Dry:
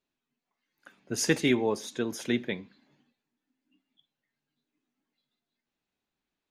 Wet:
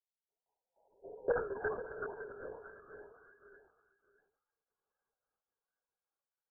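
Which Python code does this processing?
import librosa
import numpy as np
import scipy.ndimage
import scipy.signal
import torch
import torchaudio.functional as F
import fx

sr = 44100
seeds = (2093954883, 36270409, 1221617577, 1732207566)

y = fx.spec_swells(x, sr, rise_s=0.35)
y = fx.level_steps(y, sr, step_db=21)
y = y + 10.0 ** (-13.0 / 20.0) * np.pad(y, (int(491 * sr / 1000.0), 0))[:len(y)]
y = fx.echo_pitch(y, sr, ms=196, semitones=-2, count=2, db_per_echo=-6.0)
y = fx.brickwall_bandpass(y, sr, low_hz=370.0, high_hz=fx.steps((0.0, 1000.0), (1.29, 1700.0)))
y = fx.lpc_vocoder(y, sr, seeds[0], excitation='whisper', order=16)
y = fx.sustainer(y, sr, db_per_s=92.0)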